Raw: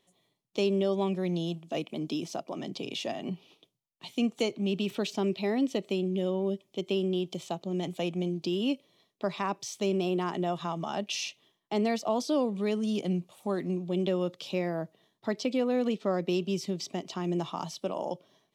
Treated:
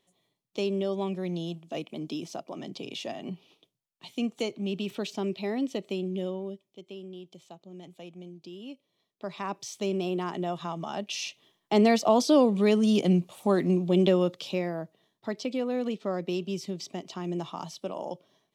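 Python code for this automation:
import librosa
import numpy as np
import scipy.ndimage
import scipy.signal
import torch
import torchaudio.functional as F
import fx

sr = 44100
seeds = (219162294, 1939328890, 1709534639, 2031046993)

y = fx.gain(x, sr, db=fx.line((6.23, -2.0), (6.8, -13.5), (8.73, -13.5), (9.57, -1.0), (11.14, -1.0), (11.79, 7.0), (14.06, 7.0), (14.84, -2.0)))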